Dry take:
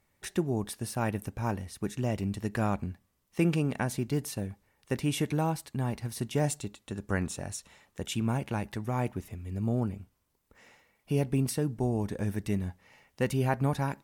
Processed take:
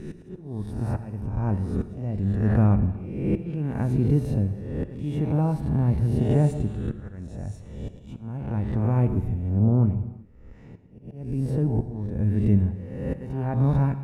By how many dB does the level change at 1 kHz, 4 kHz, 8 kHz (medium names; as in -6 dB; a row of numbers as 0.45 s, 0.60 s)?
-1.0 dB, under -10 dB, under -15 dB